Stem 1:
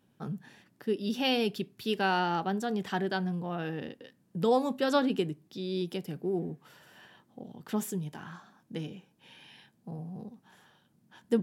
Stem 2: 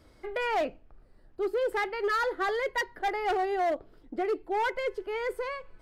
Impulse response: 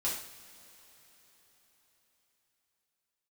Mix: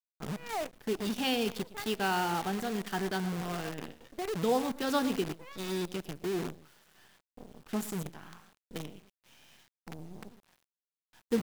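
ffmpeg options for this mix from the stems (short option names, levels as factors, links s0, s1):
-filter_complex "[0:a]volume=0.708,asplit=4[s0][s1][s2][s3];[s1]volume=0.075[s4];[s2]volume=0.2[s5];[1:a]lowpass=4200,volume=0.422[s6];[s3]apad=whole_len=256454[s7];[s6][s7]sidechaincompress=threshold=0.00251:ratio=8:attack=44:release=174[s8];[2:a]atrim=start_sample=2205[s9];[s4][s9]afir=irnorm=-1:irlink=0[s10];[s5]aecho=0:1:114:1[s11];[s0][s8][s10][s11]amix=inputs=4:normalize=0,bandreject=f=550:w=12,agate=range=0.0224:threshold=0.00158:ratio=3:detection=peak,acrusher=bits=7:dc=4:mix=0:aa=0.000001"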